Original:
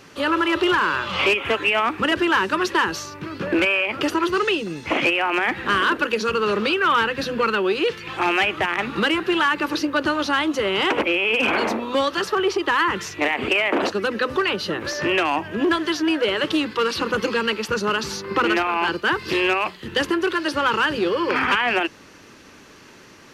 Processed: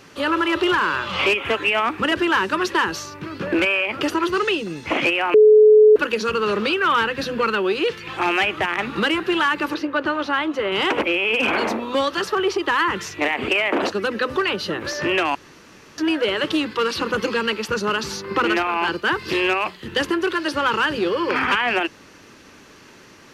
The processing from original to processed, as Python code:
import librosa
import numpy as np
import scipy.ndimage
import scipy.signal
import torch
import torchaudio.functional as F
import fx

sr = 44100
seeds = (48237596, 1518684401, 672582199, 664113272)

y = fx.bass_treble(x, sr, bass_db=-6, treble_db=-13, at=(9.74, 10.72))
y = fx.edit(y, sr, fx.bleep(start_s=5.34, length_s=0.62, hz=428.0, db=-7.0),
    fx.room_tone_fill(start_s=15.35, length_s=0.63), tone=tone)